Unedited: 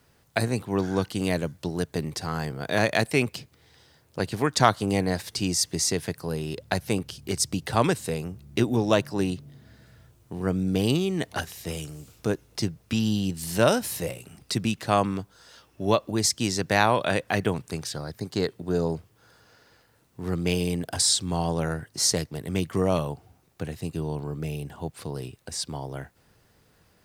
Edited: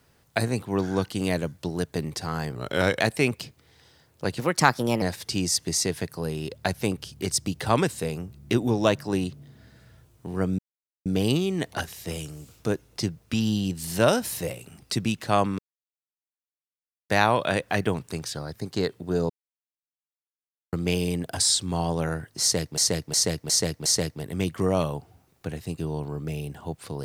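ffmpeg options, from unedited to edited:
ffmpeg -i in.wav -filter_complex "[0:a]asplit=14[link_01][link_02][link_03][link_04][link_05][link_06][link_07][link_08][link_09][link_10][link_11][link_12][link_13][link_14];[link_01]atrim=end=2.554[link_15];[link_02]atrim=start=2.55:end=2.95,asetpts=PTS-STARTPTS,asetrate=38808,aresample=44100,atrim=end_sample=20045,asetpts=PTS-STARTPTS[link_16];[link_03]atrim=start=2.946:end=4.344[link_17];[link_04]atrim=start=4.34:end=5.08,asetpts=PTS-STARTPTS,asetrate=52479,aresample=44100[link_18];[link_05]atrim=start=5.076:end=10.65,asetpts=PTS-STARTPTS,afade=type=out:start_time=5.57:duration=0.004:curve=hsin,apad=pad_dur=0.47[link_19];[link_06]atrim=start=10.65:end=15.18,asetpts=PTS-STARTPTS,afade=type=in:duration=0.004:curve=hsin,afade=type=out:start_time=4.526:duration=0.004:curve=hsin[link_20];[link_07]atrim=start=15.18:end=16.69,asetpts=PTS-STARTPTS,volume=0[link_21];[link_08]atrim=start=16.69:end=18.89,asetpts=PTS-STARTPTS,afade=type=in:duration=0.004:curve=hsin,afade=type=out:start_time=2.196:duration=0.004:curve=hsin[link_22];[link_09]atrim=start=18.89:end=20.32,asetpts=PTS-STARTPTS,volume=0[link_23];[link_10]atrim=start=20.32:end=22.372,asetpts=PTS-STARTPTS,afade=type=in:duration=0.004:curve=hsin[link_24];[link_11]atrim=start=22.008:end=22.372[link_25];[link_12]atrim=start=22.008:end=22.372[link_26];[link_13]atrim=start=22.008:end=22.372[link_27];[link_14]atrim=start=22.008[link_28];[link_15][link_16]acrossfade=duration=0.004:curve1=hsin:curve2=hsin[link_29];[link_29][link_17]acrossfade=duration=0.004:curve1=hsin:curve2=hsin[link_30];[link_30][link_18]acrossfade=duration=0.004:curve1=hsin:curve2=hsin[link_31];[link_19][link_20][link_21][link_22][link_23][link_24]concat=n=6:v=0:a=1[link_32];[link_31][link_32]acrossfade=duration=0.004:curve1=hsin:curve2=hsin[link_33];[link_33][link_25]acrossfade=duration=0.004:curve1=hsin:curve2=hsin[link_34];[link_34][link_26]acrossfade=duration=0.004:curve1=hsin:curve2=hsin[link_35];[link_35][link_27]acrossfade=duration=0.004:curve1=hsin:curve2=hsin[link_36];[link_36][link_28]acrossfade=duration=0.004:curve1=hsin:curve2=hsin" out.wav

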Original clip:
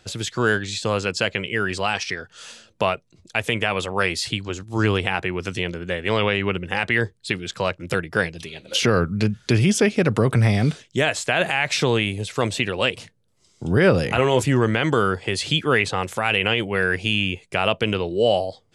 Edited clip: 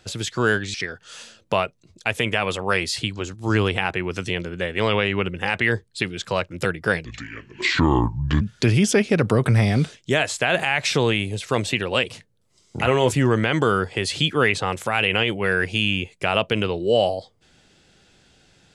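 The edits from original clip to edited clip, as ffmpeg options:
ffmpeg -i in.wav -filter_complex "[0:a]asplit=5[link_01][link_02][link_03][link_04][link_05];[link_01]atrim=end=0.742[link_06];[link_02]atrim=start=2.028:end=8.344[link_07];[link_03]atrim=start=8.34:end=9.28,asetpts=PTS-STARTPTS,asetrate=30429,aresample=44100,atrim=end_sample=60078,asetpts=PTS-STARTPTS[link_08];[link_04]atrim=start=9.276:end=13.662[link_09];[link_05]atrim=start=14.098[link_10];[link_06][link_07]acrossfade=duration=0.004:curve1=hsin:curve2=hsin[link_11];[link_11][link_08]acrossfade=duration=0.004:curve1=hsin:curve2=hsin[link_12];[link_12][link_09]acrossfade=duration=0.004:curve1=hsin:curve2=hsin[link_13];[link_13][link_10]acrossfade=duration=0.004:curve1=hsin:curve2=hsin" out.wav

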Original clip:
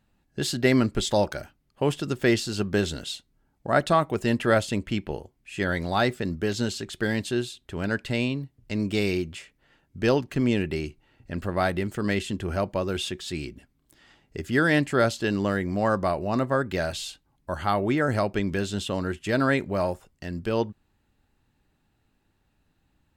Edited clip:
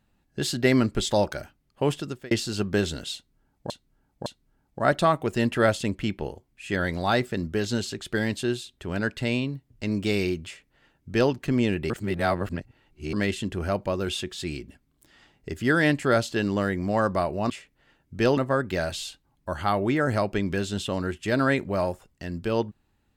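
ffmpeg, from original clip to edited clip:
ffmpeg -i in.wav -filter_complex "[0:a]asplit=8[link_01][link_02][link_03][link_04][link_05][link_06][link_07][link_08];[link_01]atrim=end=2.31,asetpts=PTS-STARTPTS,afade=type=out:start_time=1.93:duration=0.38[link_09];[link_02]atrim=start=2.31:end=3.702,asetpts=PTS-STARTPTS,afade=type=in:duration=0.004:curve=hsin[link_10];[link_03]atrim=start=3.138:end=3.702[link_11];[link_04]atrim=start=3.138:end=10.782[link_12];[link_05]atrim=start=10.778:end=12.012,asetpts=PTS-STARTPTS,areverse[link_13];[link_06]atrim=start=12.008:end=16.382[link_14];[link_07]atrim=start=9.328:end=10.202[link_15];[link_08]atrim=start=16.378[link_16];[link_09][link_10]concat=n=2:v=0:a=1[link_17];[link_17][link_11]acrossfade=duration=0.004:curve1=hsin:curve2=hsin[link_18];[link_18][link_12]acrossfade=duration=0.004:curve1=hsin:curve2=hsin[link_19];[link_19][link_13]acrossfade=duration=0.004:curve1=hsin:curve2=hsin[link_20];[link_20][link_14]acrossfade=duration=0.004:curve1=hsin:curve2=hsin[link_21];[link_21][link_15]acrossfade=duration=0.004:curve1=hsin:curve2=hsin[link_22];[link_22][link_16]acrossfade=duration=0.004:curve1=hsin:curve2=hsin" out.wav

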